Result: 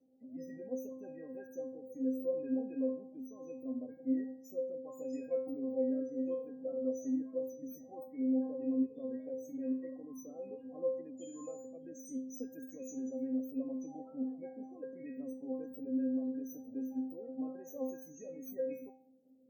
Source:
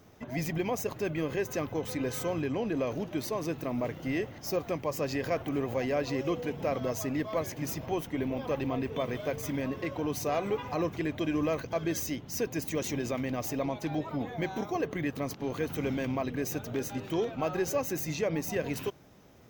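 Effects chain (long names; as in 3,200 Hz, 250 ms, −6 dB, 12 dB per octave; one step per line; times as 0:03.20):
high-pass filter 190 Hz 12 dB per octave
flat-topped bell 2,000 Hz −15 dB 2.8 octaves
0:11.17–0:11.64: steady tone 7,000 Hz −55 dBFS
spectral peaks only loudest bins 32
rotating-speaker cabinet horn 0.7 Hz, later 7.5 Hz, at 0:16.22
stiff-string resonator 260 Hz, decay 0.55 s, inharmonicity 0.002
level +11 dB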